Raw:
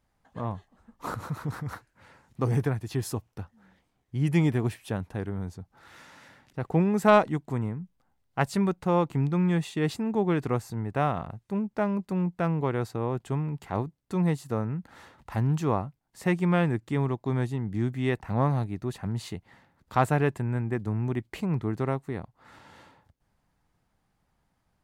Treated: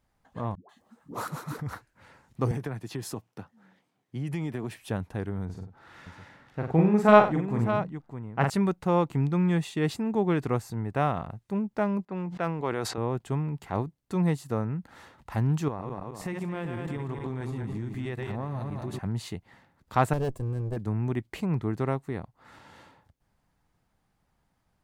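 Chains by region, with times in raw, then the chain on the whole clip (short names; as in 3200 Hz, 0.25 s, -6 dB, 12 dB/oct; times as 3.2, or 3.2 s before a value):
0.55–1.59 HPF 180 Hz + high shelf 4600 Hz +6 dB + dispersion highs, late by 0.14 s, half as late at 380 Hz
2.51–4.77 HPF 130 Hz 24 dB/oct + high shelf 8300 Hz -4 dB + compressor, threshold -28 dBFS
5.45–8.5 high shelf 5200 Hz -12 dB + tapped delay 43/93/611 ms -3.5/-11/-9 dB
12.05–12.98 HPF 370 Hz 6 dB/oct + low-pass opened by the level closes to 1500 Hz, open at -27 dBFS + sustainer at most 44 dB/s
15.68–18.99 regenerating reverse delay 0.108 s, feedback 63%, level -6.5 dB + compressor 10:1, threshold -29 dBFS
20.13–20.77 minimum comb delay 1.8 ms + bell 2000 Hz -14.5 dB 2 oct
whole clip: dry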